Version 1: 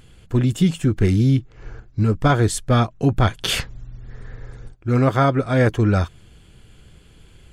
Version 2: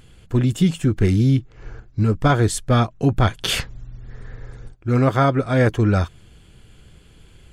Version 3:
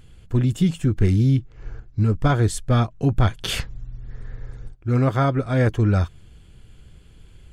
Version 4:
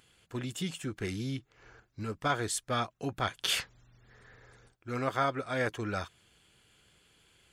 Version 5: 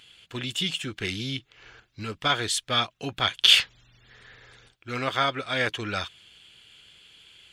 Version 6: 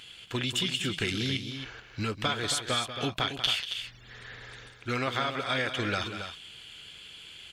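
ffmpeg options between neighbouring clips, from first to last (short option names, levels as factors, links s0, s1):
-af anull
-af "lowshelf=f=130:g=7.5,volume=0.596"
-af "highpass=f=1000:p=1,volume=0.75"
-af "equalizer=f=3200:w=0.97:g=14.5,volume=1.19"
-af "acompressor=threshold=0.0251:ratio=6,aecho=1:1:189.5|274.1:0.282|0.355,volume=1.78"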